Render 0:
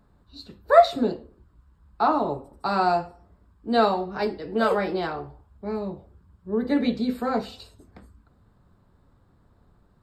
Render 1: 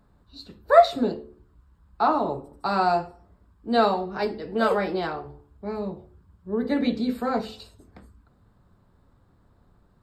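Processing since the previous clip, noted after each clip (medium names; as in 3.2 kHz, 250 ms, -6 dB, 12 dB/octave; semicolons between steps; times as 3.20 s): de-hum 72.64 Hz, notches 6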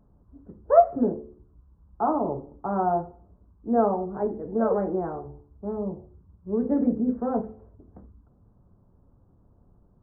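Gaussian low-pass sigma 8.8 samples; trim +1.5 dB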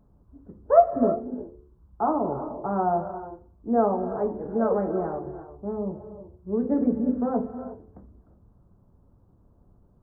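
reverberation, pre-delay 3 ms, DRR 10 dB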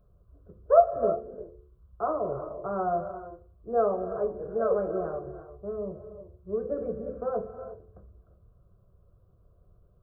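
static phaser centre 1.3 kHz, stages 8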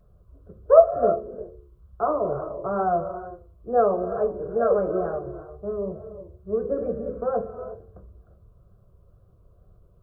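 vibrato 2.2 Hz 58 cents; trim +5 dB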